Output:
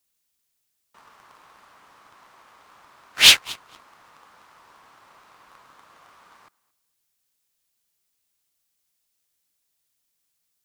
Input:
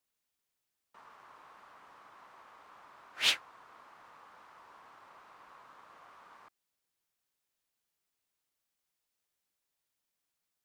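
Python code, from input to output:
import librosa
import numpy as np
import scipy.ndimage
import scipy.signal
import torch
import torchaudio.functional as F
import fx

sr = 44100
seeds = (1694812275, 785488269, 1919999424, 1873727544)

p1 = fx.high_shelf(x, sr, hz=2700.0, db=11.0)
p2 = p1 + fx.echo_feedback(p1, sr, ms=226, feedback_pct=23, wet_db=-23.5, dry=0)
p3 = fx.leveller(p2, sr, passes=2)
p4 = fx.low_shelf(p3, sr, hz=290.0, db=7.0)
y = F.gain(torch.from_numpy(p4), 4.5).numpy()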